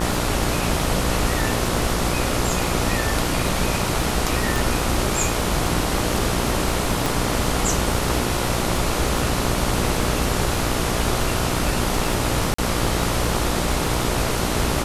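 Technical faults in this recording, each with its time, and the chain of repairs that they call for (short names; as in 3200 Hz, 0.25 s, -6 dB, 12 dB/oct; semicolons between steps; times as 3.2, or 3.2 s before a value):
buzz 60 Hz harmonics 24 -26 dBFS
crackle 43/s -27 dBFS
4.56 pop
7.06 pop
12.54–12.58 gap 44 ms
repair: de-click; de-hum 60 Hz, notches 24; interpolate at 12.54, 44 ms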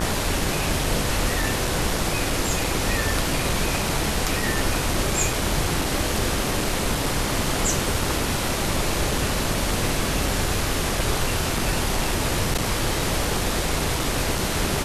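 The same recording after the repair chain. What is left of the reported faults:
none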